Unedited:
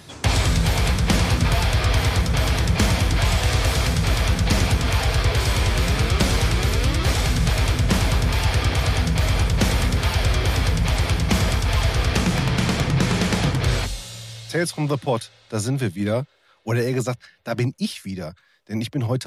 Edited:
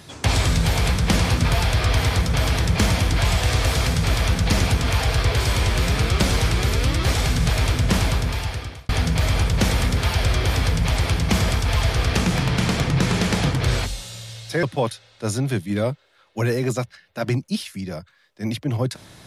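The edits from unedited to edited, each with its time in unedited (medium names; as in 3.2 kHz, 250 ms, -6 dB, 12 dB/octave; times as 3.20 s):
8.03–8.89 s: fade out
14.63–14.93 s: delete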